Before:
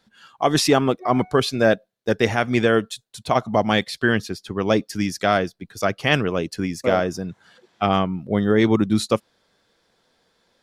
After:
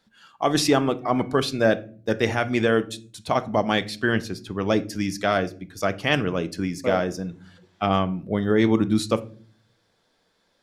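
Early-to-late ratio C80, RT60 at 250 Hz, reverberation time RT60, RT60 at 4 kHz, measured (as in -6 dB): 24.0 dB, 0.80 s, 0.45 s, 0.25 s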